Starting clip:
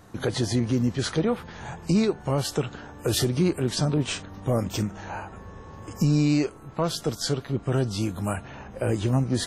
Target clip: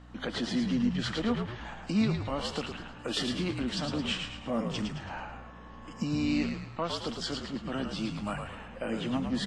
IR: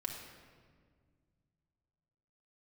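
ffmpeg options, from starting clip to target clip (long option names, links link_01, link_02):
-filter_complex "[0:a]highpass=frequency=200:width=0.5412,highpass=frequency=200:width=1.3066,equalizer=frequency=230:width_type=q:width=4:gain=6,equalizer=frequency=400:width_type=q:width=4:gain=-10,equalizer=frequency=1200:width_type=q:width=4:gain=3,equalizer=frequency=1900:width_type=q:width=4:gain=4,equalizer=frequency=3000:width_type=q:width=4:gain=8,equalizer=frequency=6300:width_type=q:width=4:gain=-7,lowpass=frequency=7200:width=0.5412,lowpass=frequency=7200:width=1.3066,aeval=exprs='val(0)+0.00631*(sin(2*PI*60*n/s)+sin(2*PI*2*60*n/s)/2+sin(2*PI*3*60*n/s)/3+sin(2*PI*4*60*n/s)/4+sin(2*PI*5*60*n/s)/5)':channel_layout=same,asplit=2[link_01][link_02];[link_02]asplit=5[link_03][link_04][link_05][link_06][link_07];[link_03]adelay=109,afreqshift=-59,volume=-5.5dB[link_08];[link_04]adelay=218,afreqshift=-118,volume=-12.4dB[link_09];[link_05]adelay=327,afreqshift=-177,volume=-19.4dB[link_10];[link_06]adelay=436,afreqshift=-236,volume=-26.3dB[link_11];[link_07]adelay=545,afreqshift=-295,volume=-33.2dB[link_12];[link_08][link_09][link_10][link_11][link_12]amix=inputs=5:normalize=0[link_13];[link_01][link_13]amix=inputs=2:normalize=0,volume=-6dB"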